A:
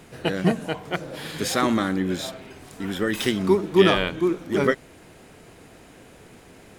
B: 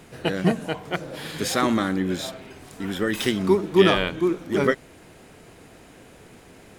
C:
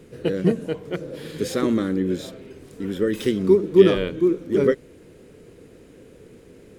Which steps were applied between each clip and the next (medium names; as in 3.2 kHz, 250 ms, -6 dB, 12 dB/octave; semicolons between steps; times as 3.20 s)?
no audible change
resonant low shelf 590 Hz +6.5 dB, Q 3; trim -6.5 dB